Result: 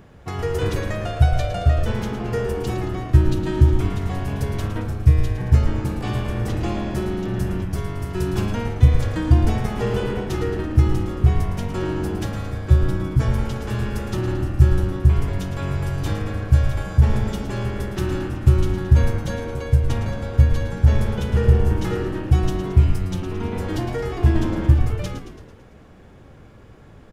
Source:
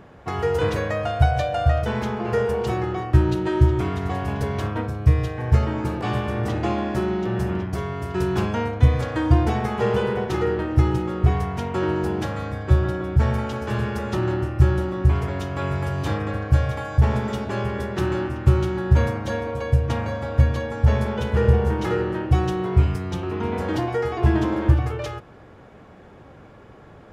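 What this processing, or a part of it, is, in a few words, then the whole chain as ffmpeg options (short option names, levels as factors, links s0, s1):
smiley-face EQ: -filter_complex "[0:a]asettb=1/sr,asplit=3[s0][s1][s2];[s0]atrim=end=12.874[s3];[s1]atrim=start=12.87:end=13.28,asetpts=PTS-STARTPTS,afade=t=in:d=0.004:c=qsin,afade=t=out:st=0.406:d=0.004:c=qsin,aecho=1:1:6.2:0.69,atrim=end_sample=18081[s4];[s2]atrim=start=13.276[s5];[s3][s4]acrossfade=d=0.004:c1=hsin:c2=qsin[s6];[s6][s5]acrossfade=d=0.004:c1=qsin:c2=hsin,asplit=8[s7][s8][s9][s10][s11][s12][s13][s14];[s8]adelay=111,afreqshift=-87,volume=0.316[s15];[s9]adelay=222,afreqshift=-174,volume=0.184[s16];[s10]adelay=333,afreqshift=-261,volume=0.106[s17];[s11]adelay=444,afreqshift=-348,volume=0.0617[s18];[s12]adelay=555,afreqshift=-435,volume=0.0359[s19];[s13]adelay=666,afreqshift=-522,volume=0.0207[s20];[s14]adelay=777,afreqshift=-609,volume=0.012[s21];[s7][s15][s16][s17][s18][s19][s20][s21]amix=inputs=8:normalize=0,lowshelf=f=85:g=7,equalizer=f=890:t=o:w=2.2:g=-4.5,highshelf=f=6100:g=8,volume=0.891"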